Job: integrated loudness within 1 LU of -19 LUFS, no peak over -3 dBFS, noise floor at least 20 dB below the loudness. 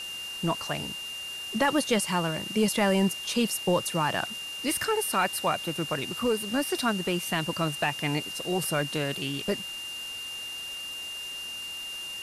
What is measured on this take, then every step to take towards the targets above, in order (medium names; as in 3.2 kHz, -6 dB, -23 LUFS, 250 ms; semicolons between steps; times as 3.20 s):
steady tone 2.8 kHz; tone level -35 dBFS; noise floor -37 dBFS; noise floor target -49 dBFS; loudness -28.5 LUFS; peak level -14.0 dBFS; loudness target -19.0 LUFS
-> band-stop 2.8 kHz, Q 30; noise print and reduce 12 dB; trim +9.5 dB